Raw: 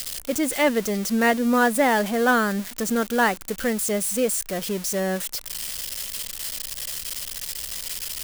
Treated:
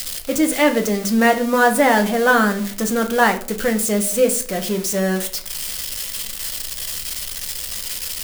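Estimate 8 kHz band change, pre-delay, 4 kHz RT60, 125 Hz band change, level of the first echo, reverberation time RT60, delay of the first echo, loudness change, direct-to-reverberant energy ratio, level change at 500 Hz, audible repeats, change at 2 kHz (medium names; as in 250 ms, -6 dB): +4.0 dB, 6 ms, 0.35 s, +6.0 dB, no echo, 0.45 s, no echo, +4.5 dB, 4.5 dB, +5.0 dB, no echo, +5.0 dB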